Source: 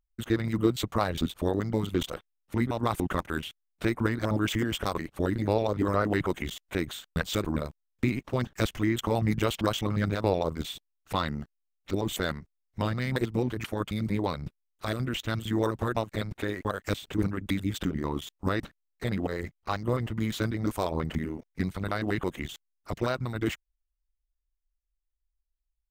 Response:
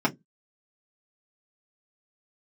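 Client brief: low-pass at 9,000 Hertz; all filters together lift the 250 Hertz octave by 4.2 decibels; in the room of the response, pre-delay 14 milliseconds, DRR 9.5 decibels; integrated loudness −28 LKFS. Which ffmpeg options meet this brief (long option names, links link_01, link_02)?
-filter_complex "[0:a]lowpass=9000,equalizer=frequency=250:width_type=o:gain=5.5,asplit=2[link_01][link_02];[1:a]atrim=start_sample=2205,adelay=14[link_03];[link_02][link_03]afir=irnorm=-1:irlink=0,volume=-22.5dB[link_04];[link_01][link_04]amix=inputs=2:normalize=0,volume=-1.5dB"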